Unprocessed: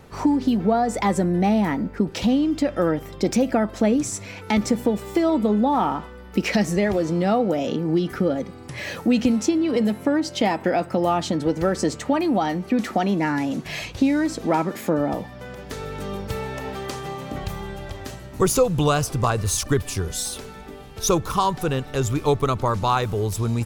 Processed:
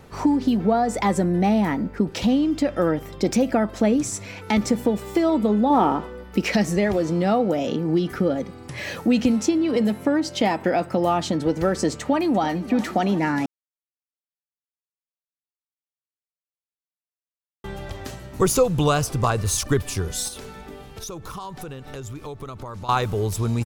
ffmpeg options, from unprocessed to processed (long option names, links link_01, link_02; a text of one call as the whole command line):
ffmpeg -i in.wav -filter_complex "[0:a]asettb=1/sr,asplit=3[link_01][link_02][link_03];[link_01]atrim=end=5.704[link_04];[link_02]atrim=start=5.7:end=6.24,asetpts=PTS-STARTPTS,afade=type=in:duration=0.004:curve=qsin,afade=type=out:start_time=0.536:duration=0.004:curve=qsin,equalizer=frequency=400:width=0.98:gain=8[link_05];[link_03]atrim=start=6.236[link_06];[link_04][link_05]acrossfade=duration=0.004:curve1=hsin:curve2=qsin[link_07];[link_07][link_06]acrossfade=duration=0.004:curve1=qsin:curve2=hsin,asplit=2[link_08][link_09];[link_09]afade=type=in:start_time=12:duration=0.01,afade=type=out:start_time=12.63:duration=0.01,aecho=0:1:340|680|1020|1360|1700|2040|2380|2720|3060|3400:0.158489|0.118867|0.0891502|0.0668627|0.050147|0.0376103|0.0282077|0.0211558|0.0158668|0.0119001[link_10];[link_08][link_10]amix=inputs=2:normalize=0,asettb=1/sr,asplit=3[link_11][link_12][link_13];[link_11]atrim=end=20.284[link_14];[link_12]atrim=start=20.28:end=22.89,asetpts=PTS-STARTPTS,afade=type=in:duration=0.004:curve=qsin,afade=type=out:start_time=2.606:duration=0.004:curve=qsin,acompressor=threshold=-32dB:ratio=6:attack=3.2:release=140:knee=1:detection=peak[link_15];[link_13]atrim=start=22.886[link_16];[link_14][link_15]acrossfade=duration=0.004:curve1=hsin:curve2=qsin[link_17];[link_17][link_16]acrossfade=duration=0.004:curve1=qsin:curve2=hsin,asplit=3[link_18][link_19][link_20];[link_18]atrim=end=13.46,asetpts=PTS-STARTPTS,afade=type=out:start_time=13.456:duration=0.004:curve=hsin[link_21];[link_19]atrim=start=13.46:end=17.64,asetpts=PTS-STARTPTS,volume=0[link_22];[link_20]atrim=start=17.64,asetpts=PTS-STARTPTS,afade=type=in:duration=0.004:curve=hsin[link_23];[link_21][link_22][link_23]concat=n=3:v=0:a=1" out.wav